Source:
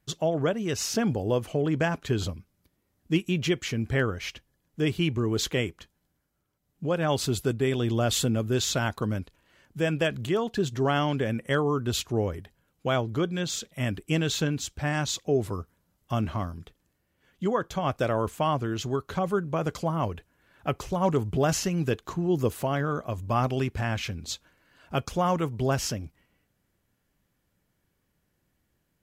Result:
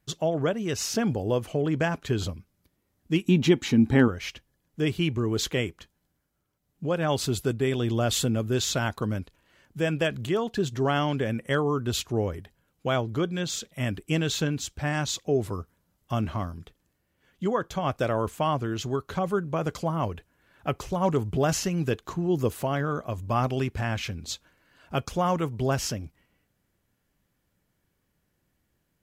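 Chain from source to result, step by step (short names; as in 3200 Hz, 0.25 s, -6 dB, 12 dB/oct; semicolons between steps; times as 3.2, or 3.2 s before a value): 3.25–4.08 small resonant body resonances 250/850/3800 Hz, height 14 dB, ringing for 30 ms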